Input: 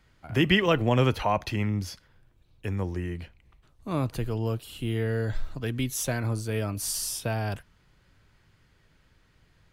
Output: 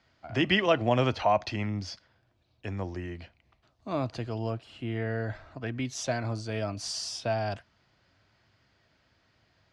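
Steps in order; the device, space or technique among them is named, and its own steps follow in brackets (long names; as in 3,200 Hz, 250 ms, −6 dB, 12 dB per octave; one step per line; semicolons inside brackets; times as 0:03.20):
0:04.50–0:05.85: high shelf with overshoot 2,800 Hz −6.5 dB, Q 1.5
car door speaker (loudspeaker in its box 97–6,500 Hz, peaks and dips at 160 Hz −8 dB, 440 Hz −4 dB, 670 Hz +8 dB, 4,800 Hz +5 dB)
level −2 dB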